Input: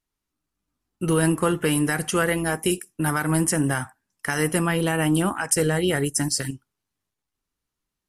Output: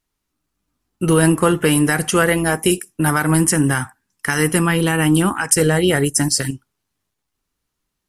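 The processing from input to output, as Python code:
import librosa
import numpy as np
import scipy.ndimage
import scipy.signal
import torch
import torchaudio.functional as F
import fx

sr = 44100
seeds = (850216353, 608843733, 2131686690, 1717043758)

y = fx.peak_eq(x, sr, hz=630.0, db=-7.5, octaves=0.51, at=(3.34, 5.61))
y = y * librosa.db_to_amplitude(6.5)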